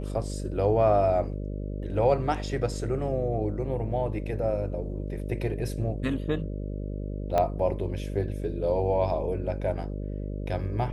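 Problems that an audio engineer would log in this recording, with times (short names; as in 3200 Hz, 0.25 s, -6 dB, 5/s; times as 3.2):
buzz 50 Hz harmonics 12 -33 dBFS
7.38 pop -13 dBFS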